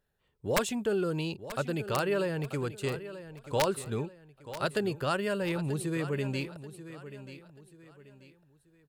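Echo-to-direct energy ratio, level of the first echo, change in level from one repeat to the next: -13.0 dB, -13.5 dB, -9.5 dB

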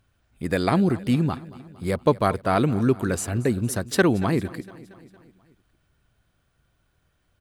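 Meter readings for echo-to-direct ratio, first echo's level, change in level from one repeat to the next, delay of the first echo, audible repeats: -17.0 dB, -19.0 dB, -4.5 dB, 0.23 s, 4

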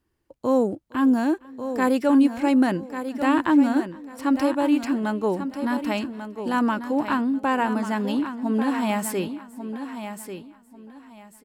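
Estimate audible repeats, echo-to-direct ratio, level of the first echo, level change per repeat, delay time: 5, -9.0 dB, -24.0 dB, no steady repeat, 0.461 s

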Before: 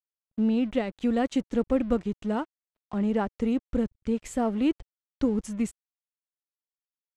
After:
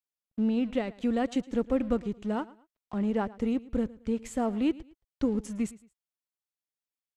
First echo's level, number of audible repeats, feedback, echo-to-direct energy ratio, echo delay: -20.0 dB, 2, 30%, -19.5 dB, 0.111 s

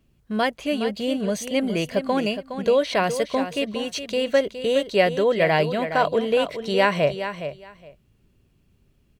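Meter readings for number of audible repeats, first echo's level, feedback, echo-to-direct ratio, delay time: 2, -10.0 dB, 17%, -10.0 dB, 0.415 s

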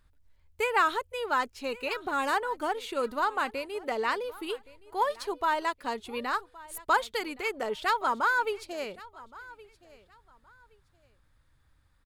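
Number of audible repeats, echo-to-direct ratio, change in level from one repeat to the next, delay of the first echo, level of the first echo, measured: 2, -20.5 dB, -12.5 dB, 1.119 s, -20.5 dB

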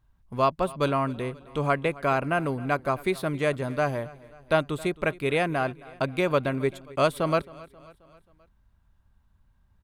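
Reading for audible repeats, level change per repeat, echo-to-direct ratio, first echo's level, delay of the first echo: 3, -5.5 dB, -19.5 dB, -21.0 dB, 0.267 s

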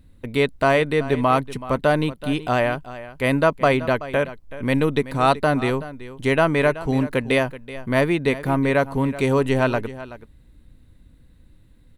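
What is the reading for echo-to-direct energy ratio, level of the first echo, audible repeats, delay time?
-15.5 dB, -15.5 dB, 1, 0.378 s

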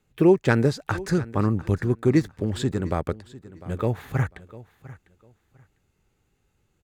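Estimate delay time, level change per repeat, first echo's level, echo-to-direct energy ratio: 0.7 s, -13.0 dB, -18.5 dB, -18.5 dB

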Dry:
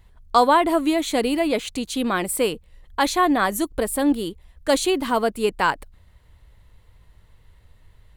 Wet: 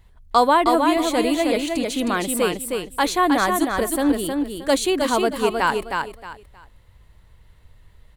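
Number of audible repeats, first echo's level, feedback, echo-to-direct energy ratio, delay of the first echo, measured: 3, -4.5 dB, 25%, -4.0 dB, 0.313 s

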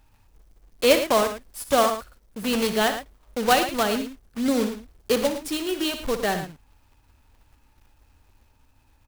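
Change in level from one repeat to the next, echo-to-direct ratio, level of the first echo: no steady repeat, -8.0 dB, -11.0 dB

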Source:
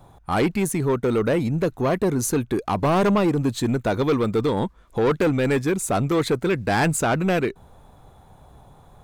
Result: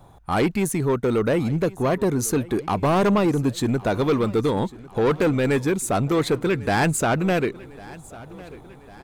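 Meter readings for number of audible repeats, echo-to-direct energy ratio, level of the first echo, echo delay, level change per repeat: 3, -19.0 dB, -20.5 dB, 1.1 s, -5.0 dB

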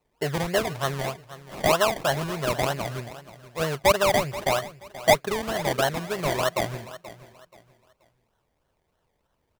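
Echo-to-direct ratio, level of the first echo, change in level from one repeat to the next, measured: -15.5 dB, -16.0 dB, -10.5 dB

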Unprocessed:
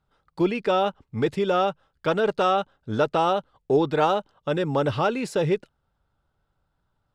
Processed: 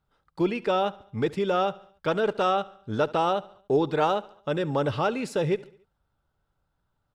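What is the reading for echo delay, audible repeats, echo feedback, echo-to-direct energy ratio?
71 ms, 3, 51%, -19.5 dB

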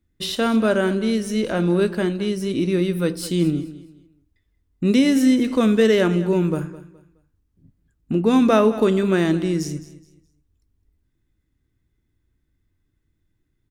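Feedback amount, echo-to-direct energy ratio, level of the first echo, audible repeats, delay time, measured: 29%, -16.0 dB, -16.5 dB, 2, 0.21 s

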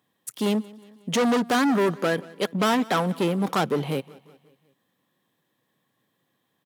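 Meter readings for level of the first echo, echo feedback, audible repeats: -22.0 dB, 53%, 3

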